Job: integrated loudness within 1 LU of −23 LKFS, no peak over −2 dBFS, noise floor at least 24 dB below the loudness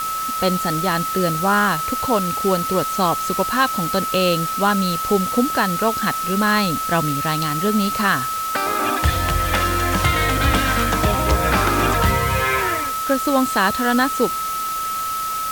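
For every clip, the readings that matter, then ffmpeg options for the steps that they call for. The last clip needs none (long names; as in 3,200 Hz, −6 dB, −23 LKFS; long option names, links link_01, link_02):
interfering tone 1,300 Hz; level of the tone −22 dBFS; background noise floor −24 dBFS; target noise floor −43 dBFS; integrated loudness −19.0 LKFS; sample peak −4.5 dBFS; target loudness −23.0 LKFS
→ -af "bandreject=frequency=1300:width=30"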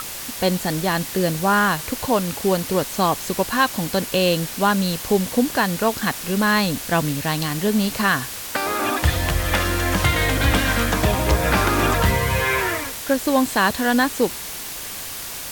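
interfering tone none found; background noise floor −32 dBFS; target noise floor −45 dBFS
→ -af "afftdn=noise_reduction=13:noise_floor=-32"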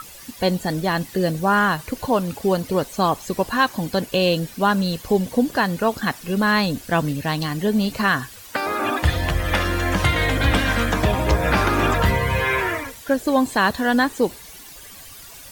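background noise floor −41 dBFS; target noise floor −45 dBFS
→ -af "afftdn=noise_reduction=6:noise_floor=-41"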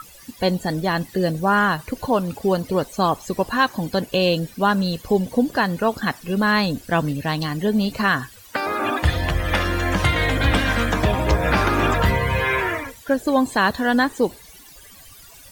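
background noise floor −45 dBFS; integrated loudness −21.0 LKFS; sample peak −6.0 dBFS; target loudness −23.0 LKFS
→ -af "volume=-2dB"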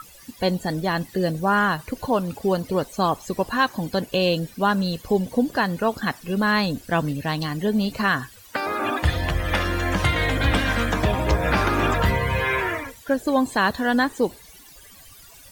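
integrated loudness −23.0 LKFS; sample peak −8.0 dBFS; background noise floor −47 dBFS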